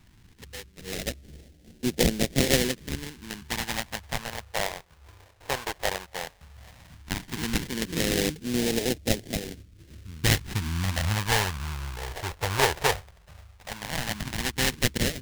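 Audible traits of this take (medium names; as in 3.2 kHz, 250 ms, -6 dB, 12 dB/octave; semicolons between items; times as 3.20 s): aliases and images of a low sample rate 1.3 kHz, jitter 20%; phasing stages 2, 0.14 Hz, lowest notch 230–1000 Hz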